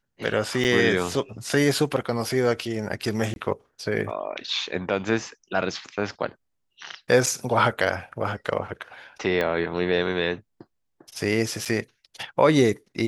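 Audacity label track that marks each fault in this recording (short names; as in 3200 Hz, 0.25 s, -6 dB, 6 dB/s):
0.640000	0.650000	gap 8.7 ms
3.340000	3.360000	gap 21 ms
7.260000	7.270000	gap 6.1 ms
9.410000	9.410000	pop -13 dBFS
11.650000	11.660000	gap 6.9 ms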